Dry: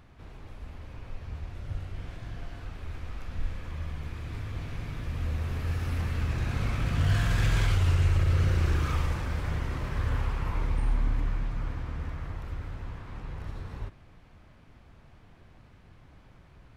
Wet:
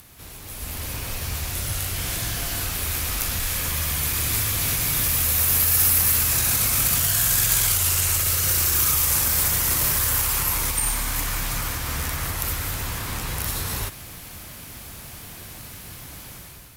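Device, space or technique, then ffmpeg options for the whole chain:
FM broadcast chain: -filter_complex "[0:a]highpass=f=50:p=1,dynaudnorm=f=430:g=3:m=10dB,acrossover=split=600|1300|4800[a][b][c][d];[a]acompressor=threshold=-30dB:ratio=4[e];[b]acompressor=threshold=-39dB:ratio=4[f];[c]acompressor=threshold=-41dB:ratio=4[g];[d]acompressor=threshold=-46dB:ratio=4[h];[e][f][g][h]amix=inputs=4:normalize=0,aemphasis=mode=production:type=75fm,alimiter=limit=-22dB:level=0:latency=1:release=112,asoftclip=type=hard:threshold=-25.5dB,lowpass=f=15k:w=0.5412,lowpass=f=15k:w=1.3066,aemphasis=mode=production:type=75fm,volume=4.5dB"

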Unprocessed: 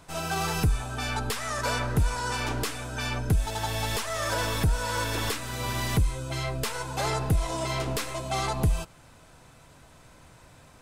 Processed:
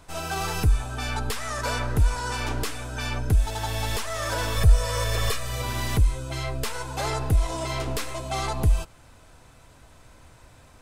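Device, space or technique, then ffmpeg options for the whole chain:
low shelf boost with a cut just above: -filter_complex "[0:a]asettb=1/sr,asplit=3[a][b][c];[a]atrim=end=4.564[d];[b]atrim=start=4.56:end=5.62,asetpts=PTS-STARTPTS,afade=t=in:d=0.004:c=qsin,afade=t=out:st=1.056:d=0.004:c=qsin,aecho=1:1:1.7:0.74,atrim=end_sample=46746[e];[c]atrim=start=5.616[f];[d][e]acrossfade=d=0.004:c1=hsin:c2=qsin[g];[g][f]acrossfade=d=0.004:c1=qsin:c2=hsin,lowshelf=f=94:g=7,equalizer=f=160:t=o:w=0.54:g=-6"

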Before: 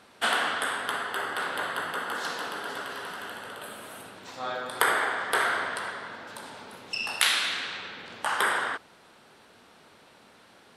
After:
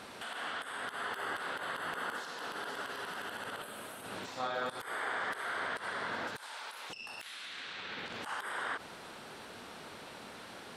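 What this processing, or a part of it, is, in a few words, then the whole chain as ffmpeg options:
de-esser from a sidechain: -filter_complex "[0:a]asplit=2[a][b];[b]highpass=4.8k,apad=whole_len=474899[c];[a][c]sidechaincompress=threshold=-55dB:ratio=20:attack=0.75:release=71,asettb=1/sr,asplit=3[d][e][f];[d]atrim=end=6.364[g];[e]atrim=start=6.36:end=6.9,asetpts=PTS-STARTPTS,afade=t=in:d=0.004:c=qsin,afade=t=out:st=0.536:d=0.004:c=qsin,highpass=970[h];[f]atrim=start=6.896[i];[g][h]acrossfade=d=0.004:c1=hsin:c2=qsin[j];[j][i]acrossfade=d=0.004:c1=qsin:c2=hsin,volume=7dB"

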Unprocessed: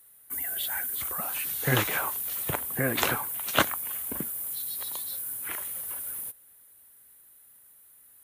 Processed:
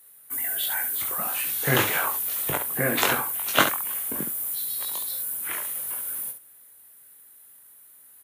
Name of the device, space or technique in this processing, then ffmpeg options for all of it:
slapback doubling: -filter_complex "[0:a]lowshelf=f=98:g=-11.5,asplit=3[a][b][c];[b]adelay=21,volume=-4.5dB[d];[c]adelay=69,volume=-8dB[e];[a][d][e]amix=inputs=3:normalize=0,volume=2.5dB"

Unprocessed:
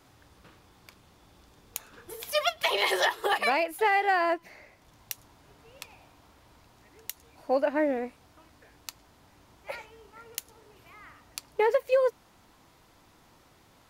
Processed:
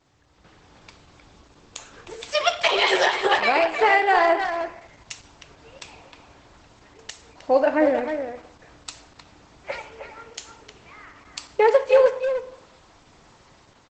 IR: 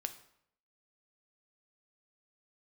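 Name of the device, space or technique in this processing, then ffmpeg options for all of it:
speakerphone in a meeting room: -filter_complex "[0:a]asettb=1/sr,asplit=3[a][b][c];[a]atrim=end=8.054[d];[b]atrim=start=8.05:end=9.76,asetpts=PTS-STARTPTS,afade=t=in:d=0.004:c=qsin,afade=t=out:st=1.706:d=0.004:c=qsin,bandreject=f=134.2:t=h:w=4,bandreject=f=268.4:t=h:w=4,bandreject=f=402.6:t=h:w=4,bandreject=f=536.8:t=h:w=4,bandreject=f=671:t=h:w=4,bandreject=f=805.2:t=h:w=4[e];[c]atrim=start=9.756[f];[d][e]acrossfade=d=0.004:c1=hsin:c2=qsin[g];[g][f]acrossfade=d=0.004:c1=qsin:c2=hsin,equalizer=f=250:t=o:w=0.65:g=-2[h];[1:a]atrim=start_sample=2205[i];[h][i]afir=irnorm=-1:irlink=0,asplit=2[j][k];[k]adelay=310,highpass=300,lowpass=3.4k,asoftclip=type=hard:threshold=-21.5dB,volume=-7dB[l];[j][l]amix=inputs=2:normalize=0,dynaudnorm=f=150:g=7:m=11dB,volume=-2dB" -ar 48000 -c:a libopus -b:a 12k

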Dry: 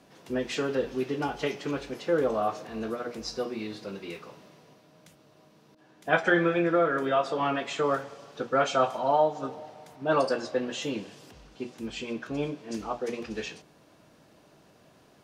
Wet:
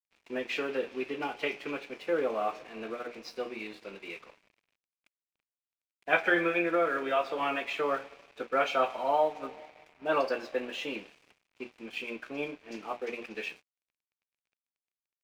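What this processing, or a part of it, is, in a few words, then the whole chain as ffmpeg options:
pocket radio on a weak battery: -af "highpass=280,lowpass=4.3k,aeval=exprs='sgn(val(0))*max(abs(val(0))-0.00282,0)':c=same,equalizer=f=2.4k:t=o:w=0.47:g=10.5,volume=-3dB"

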